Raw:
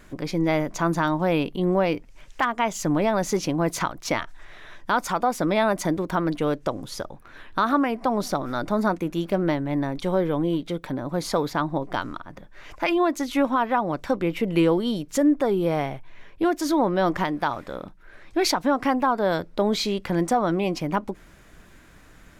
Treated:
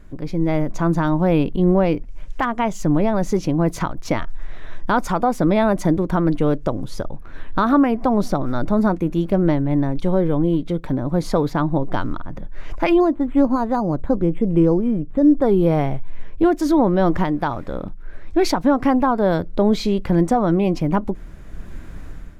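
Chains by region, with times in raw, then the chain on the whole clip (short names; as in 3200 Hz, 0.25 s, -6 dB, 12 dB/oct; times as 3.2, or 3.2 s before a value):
13–15.42 tape spacing loss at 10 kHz 37 dB + decimation joined by straight lines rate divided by 8×
whole clip: tilt -3 dB/oct; AGC; high shelf 6400 Hz +7 dB; gain -4.5 dB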